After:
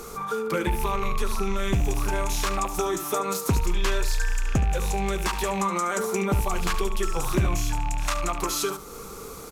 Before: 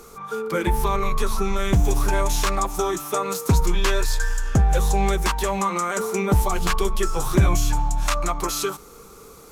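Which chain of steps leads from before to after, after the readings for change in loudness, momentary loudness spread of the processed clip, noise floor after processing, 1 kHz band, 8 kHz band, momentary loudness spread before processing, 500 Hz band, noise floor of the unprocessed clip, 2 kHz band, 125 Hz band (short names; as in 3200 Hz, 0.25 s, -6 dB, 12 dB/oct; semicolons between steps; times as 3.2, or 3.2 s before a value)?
-4.0 dB, 4 LU, -40 dBFS, -3.5 dB, -3.0 dB, 5 LU, -3.0 dB, -45 dBFS, -2.5 dB, -5.5 dB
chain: rattling part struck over -26 dBFS, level -22 dBFS; compressor 2:1, threshold -35 dBFS, peak gain reduction 12.5 dB; echo 72 ms -12 dB; gain +5.5 dB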